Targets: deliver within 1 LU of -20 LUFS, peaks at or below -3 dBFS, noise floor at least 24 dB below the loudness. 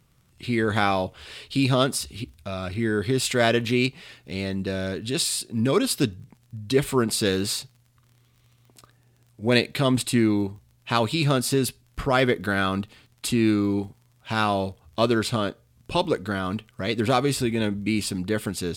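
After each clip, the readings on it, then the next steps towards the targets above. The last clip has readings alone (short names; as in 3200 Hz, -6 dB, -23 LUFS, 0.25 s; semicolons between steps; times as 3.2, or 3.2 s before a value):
ticks 24/s; loudness -24.5 LUFS; peak -5.0 dBFS; loudness target -20.0 LUFS
-> de-click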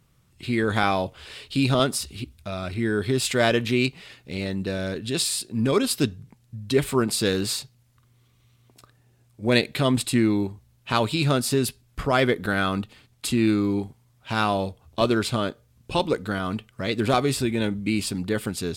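ticks 0.11/s; loudness -24.5 LUFS; peak -5.0 dBFS; loudness target -20.0 LUFS
-> gain +4.5 dB; limiter -3 dBFS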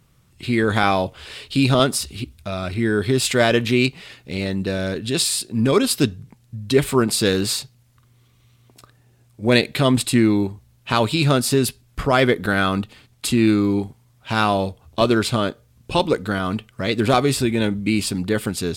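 loudness -20.0 LUFS; peak -3.0 dBFS; noise floor -57 dBFS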